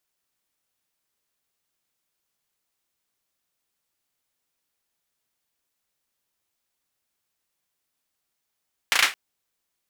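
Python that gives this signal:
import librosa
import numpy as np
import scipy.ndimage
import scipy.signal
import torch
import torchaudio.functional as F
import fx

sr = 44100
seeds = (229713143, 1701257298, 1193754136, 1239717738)

y = fx.drum_clap(sr, seeds[0], length_s=0.22, bursts=4, spacing_ms=35, hz=2000.0, decay_s=0.24)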